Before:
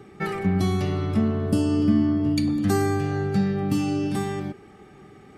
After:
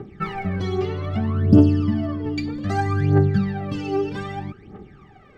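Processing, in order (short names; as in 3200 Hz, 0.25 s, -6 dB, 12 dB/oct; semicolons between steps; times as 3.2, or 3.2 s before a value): air absorption 170 m; phaser 0.63 Hz, delay 2.6 ms, feedback 79%; gain -1 dB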